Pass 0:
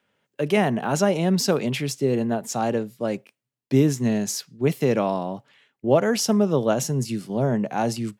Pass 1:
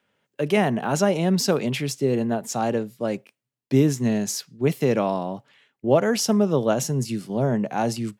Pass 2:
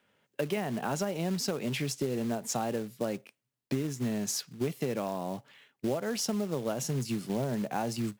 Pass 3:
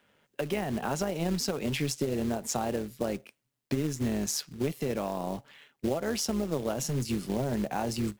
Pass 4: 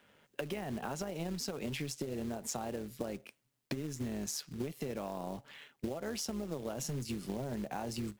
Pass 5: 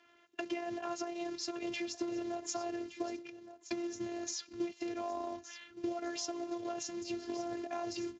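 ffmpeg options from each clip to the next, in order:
ffmpeg -i in.wav -af anull out.wav
ffmpeg -i in.wav -af "acompressor=threshold=-28dB:ratio=12,acrusher=bits=4:mode=log:mix=0:aa=0.000001" out.wav
ffmpeg -i in.wav -filter_complex "[0:a]asplit=2[link_01][link_02];[link_02]alimiter=level_in=4dB:limit=-24dB:level=0:latency=1:release=304,volume=-4dB,volume=0dB[link_03];[link_01][link_03]amix=inputs=2:normalize=0,tremolo=f=150:d=0.519" out.wav
ffmpeg -i in.wav -af "acompressor=threshold=-37dB:ratio=6,volume=1.5dB" out.wav
ffmpeg -i in.wav -af "aecho=1:1:1168:0.211,afftfilt=real='hypot(re,im)*cos(PI*b)':imag='0':win_size=512:overlap=0.75,volume=4.5dB" -ar 16000 -c:a libspeex -b:a 34k out.spx

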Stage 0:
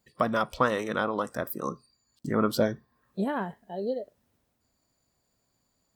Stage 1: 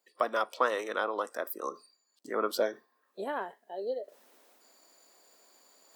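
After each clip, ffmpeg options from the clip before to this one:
ffmpeg -i in.wav -af "highpass=frequency=350:width=0.5412,highpass=frequency=350:width=1.3066,areverse,acompressor=mode=upward:threshold=-44dB:ratio=2.5,areverse,volume=-2.5dB" out.wav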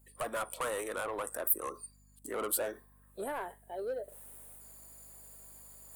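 ffmpeg -i in.wav -af "asoftclip=type=tanh:threshold=-30.5dB,highshelf=frequency=7200:width_type=q:width=3:gain=11.5,aeval=exprs='val(0)+0.000794*(sin(2*PI*50*n/s)+sin(2*PI*2*50*n/s)/2+sin(2*PI*3*50*n/s)/3+sin(2*PI*4*50*n/s)/4+sin(2*PI*5*50*n/s)/5)':channel_layout=same" out.wav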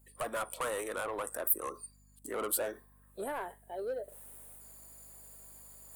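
ffmpeg -i in.wav -af anull out.wav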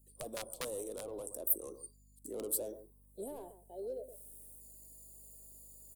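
ffmpeg -i in.wav -filter_complex "[0:a]acrossover=split=640|4200[link_01][link_02][link_03];[link_01]aecho=1:1:123:0.266[link_04];[link_02]acrusher=bits=4:mix=0:aa=0.000001[link_05];[link_04][link_05][link_03]amix=inputs=3:normalize=0,volume=-2dB" out.wav

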